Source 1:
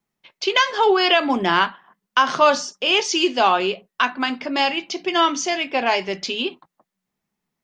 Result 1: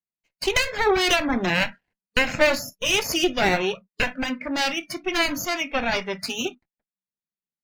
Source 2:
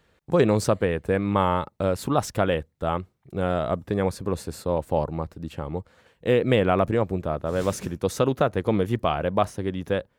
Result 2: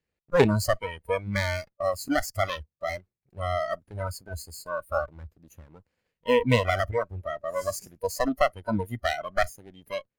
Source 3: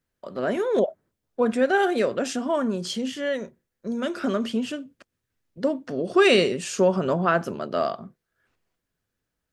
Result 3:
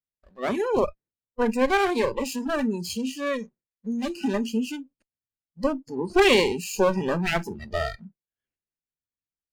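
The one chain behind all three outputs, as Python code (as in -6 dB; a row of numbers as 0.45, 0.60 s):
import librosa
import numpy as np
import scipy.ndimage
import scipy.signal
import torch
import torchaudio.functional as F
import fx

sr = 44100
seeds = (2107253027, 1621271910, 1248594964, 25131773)

y = fx.lower_of_two(x, sr, delay_ms=0.43)
y = fx.noise_reduce_blind(y, sr, reduce_db=22)
y = y * 10.0 ** (-6 / 20.0) / np.max(np.abs(y))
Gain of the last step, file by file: -1.0, +2.0, +1.0 dB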